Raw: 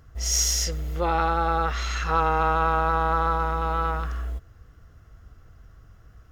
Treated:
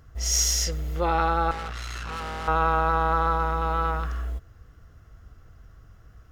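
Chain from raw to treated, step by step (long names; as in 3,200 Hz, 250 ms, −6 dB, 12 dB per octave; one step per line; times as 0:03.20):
0:01.51–0:02.48: tube saturation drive 31 dB, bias 0.65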